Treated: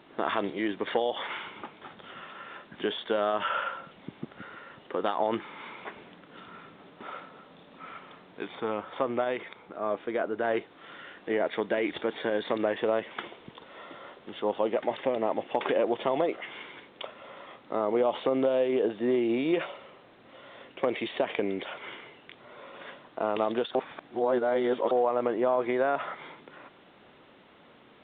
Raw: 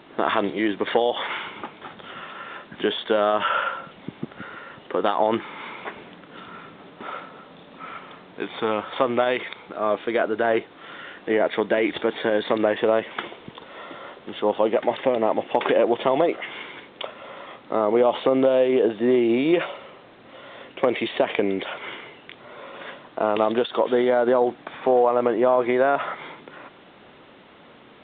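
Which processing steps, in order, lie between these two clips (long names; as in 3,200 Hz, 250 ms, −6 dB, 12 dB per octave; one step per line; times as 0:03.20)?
0:08.55–0:10.43: high-shelf EQ 3,100 Hz −11 dB
0:23.75–0:24.91: reverse
level −7 dB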